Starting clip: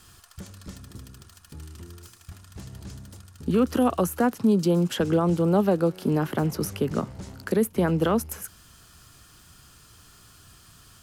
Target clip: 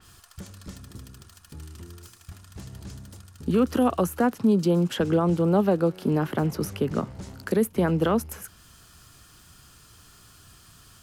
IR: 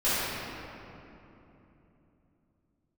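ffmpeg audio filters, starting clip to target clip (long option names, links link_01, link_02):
-af "adynamicequalizer=threshold=0.00398:dfrequency=4400:dqfactor=0.7:tfrequency=4400:tqfactor=0.7:attack=5:release=100:ratio=0.375:range=2:mode=cutabove:tftype=highshelf"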